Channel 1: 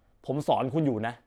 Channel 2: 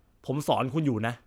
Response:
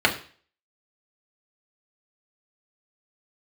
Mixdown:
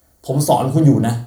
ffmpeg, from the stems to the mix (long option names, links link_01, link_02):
-filter_complex "[0:a]volume=-0.5dB,asplit=2[link_01][link_02];[link_02]volume=-10dB[link_03];[1:a]volume=-11dB,asplit=2[link_04][link_05];[link_05]volume=-8dB[link_06];[2:a]atrim=start_sample=2205[link_07];[link_03][link_06]amix=inputs=2:normalize=0[link_08];[link_08][link_07]afir=irnorm=-1:irlink=0[link_09];[link_01][link_04][link_09]amix=inputs=3:normalize=0,highpass=41,asubboost=boost=10:cutoff=230,aexciter=amount=15.8:drive=2.3:freq=4800"